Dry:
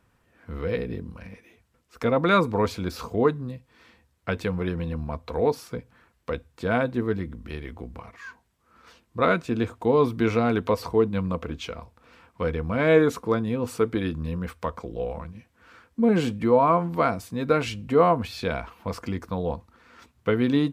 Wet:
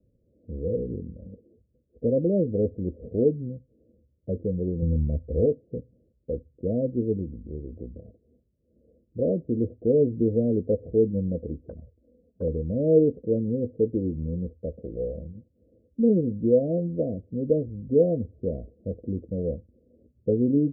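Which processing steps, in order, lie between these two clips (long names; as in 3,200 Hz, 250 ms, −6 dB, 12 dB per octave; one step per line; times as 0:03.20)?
Butterworth low-pass 600 Hz 96 dB per octave
0:04.82–0:05.46: low-shelf EQ 150 Hz +11.5 dB
0:11.69–0:12.48: flanger swept by the level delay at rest 5.1 ms, full sweep at −29 dBFS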